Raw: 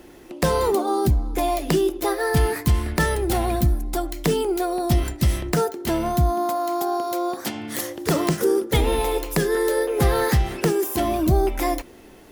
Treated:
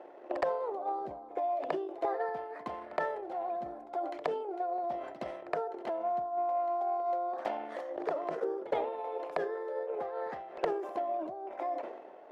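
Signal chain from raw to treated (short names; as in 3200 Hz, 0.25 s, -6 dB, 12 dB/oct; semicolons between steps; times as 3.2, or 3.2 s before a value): compressor 12:1, threshold -30 dBFS, peak gain reduction 17 dB; transient shaper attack +11 dB, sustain -5 dB; ladder band-pass 710 Hz, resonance 55%; sine folder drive 4 dB, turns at -21.5 dBFS; reverse echo 67 ms -17.5 dB; sustainer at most 55 dB/s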